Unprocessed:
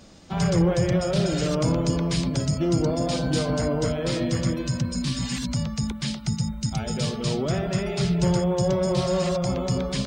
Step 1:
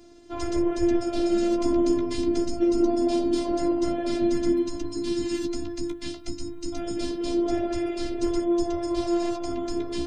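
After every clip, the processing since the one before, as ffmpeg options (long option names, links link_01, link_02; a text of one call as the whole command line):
ffmpeg -i in.wav -af "equalizer=frequency=210:width_type=o:width=2.1:gain=14,flanger=delay=7.6:depth=8.4:regen=29:speed=0.24:shape=triangular,afftfilt=real='hypot(re,im)*cos(PI*b)':imag='0':win_size=512:overlap=0.75" out.wav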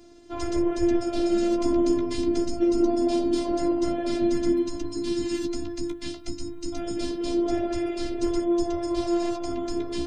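ffmpeg -i in.wav -af anull out.wav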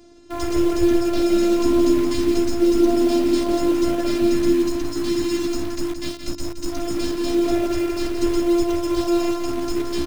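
ffmpeg -i in.wav -filter_complex "[0:a]asplit=2[link_01][link_02];[link_02]acrusher=bits=4:mix=0:aa=0.000001,volume=-8dB[link_03];[link_01][link_03]amix=inputs=2:normalize=0,aecho=1:1:172:0.398,volume=2dB" out.wav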